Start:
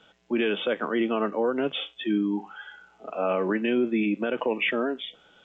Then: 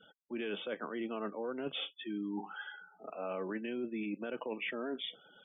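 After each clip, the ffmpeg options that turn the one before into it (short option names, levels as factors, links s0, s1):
-af "areverse,acompressor=threshold=0.02:ratio=5,areverse,afftfilt=real='re*gte(hypot(re,im),0.00224)':imag='im*gte(hypot(re,im),0.00224)':win_size=1024:overlap=0.75,volume=0.75"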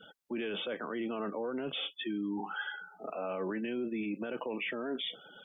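-af "alimiter=level_in=3.76:limit=0.0631:level=0:latency=1:release=16,volume=0.266,volume=2.24"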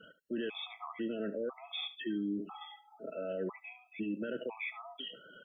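-af "aecho=1:1:73:0.178,afftfilt=real='re*gt(sin(2*PI*1*pts/sr)*(1-2*mod(floor(b*sr/1024/650),2)),0)':imag='im*gt(sin(2*PI*1*pts/sr)*(1-2*mod(floor(b*sr/1024/650),2)),0)':win_size=1024:overlap=0.75"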